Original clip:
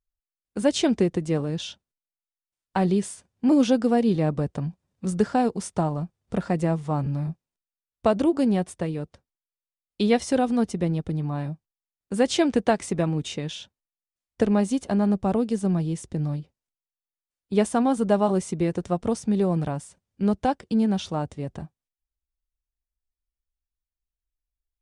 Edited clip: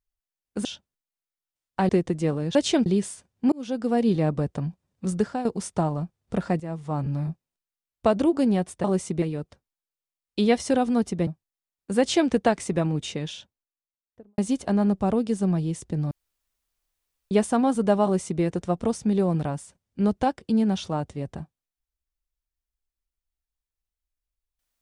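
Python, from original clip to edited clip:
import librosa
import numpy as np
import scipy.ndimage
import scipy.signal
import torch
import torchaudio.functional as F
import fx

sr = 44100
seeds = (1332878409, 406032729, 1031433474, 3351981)

y = fx.studio_fade_out(x, sr, start_s=13.41, length_s=1.19)
y = fx.edit(y, sr, fx.swap(start_s=0.65, length_s=0.31, other_s=1.62, other_length_s=1.24),
    fx.fade_in_span(start_s=3.52, length_s=0.54),
    fx.fade_out_to(start_s=5.11, length_s=0.34, floor_db=-11.0),
    fx.fade_in_from(start_s=6.6, length_s=0.68, curve='qsin', floor_db=-15.5),
    fx.cut(start_s=10.89, length_s=0.6),
    fx.room_tone_fill(start_s=16.33, length_s=1.2),
    fx.duplicate(start_s=18.26, length_s=0.38, to_s=8.84), tone=tone)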